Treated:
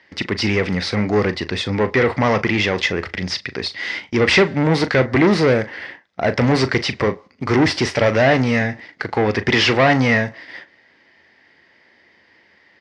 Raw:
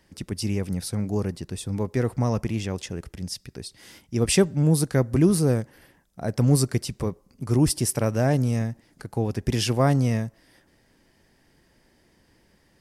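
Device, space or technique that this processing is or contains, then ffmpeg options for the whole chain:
overdrive pedal into a guitar cabinet: -filter_complex "[0:a]asplit=2[link_01][link_02];[link_02]highpass=frequency=720:poles=1,volume=26dB,asoftclip=type=tanh:threshold=-6dB[link_03];[link_01][link_03]amix=inputs=2:normalize=0,lowpass=frequency=7800:poles=1,volume=-6dB,highpass=76,equalizer=frequency=86:width_type=q:width=4:gain=8,equalizer=frequency=150:width_type=q:width=4:gain=-4,equalizer=frequency=2000:width_type=q:width=4:gain=10,lowpass=frequency=4600:width=0.5412,lowpass=frequency=4600:width=1.3066,agate=range=-11dB:threshold=-37dB:ratio=16:detection=peak,asplit=2[link_04][link_05];[link_05]adelay=38,volume=-13dB[link_06];[link_04][link_06]amix=inputs=2:normalize=0"

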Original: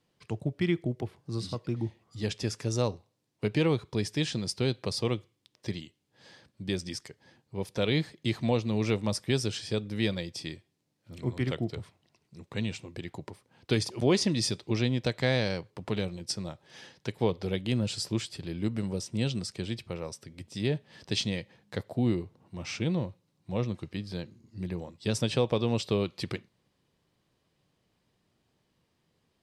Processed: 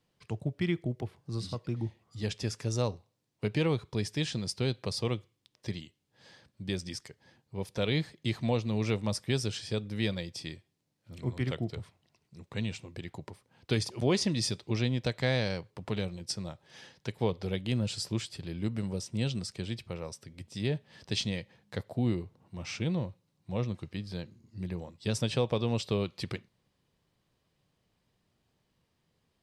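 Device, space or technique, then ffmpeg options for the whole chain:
low shelf boost with a cut just above: -af "lowshelf=frequency=68:gain=5.5,equalizer=frequency=320:width_type=o:width=0.77:gain=-2.5,volume=-2dB"

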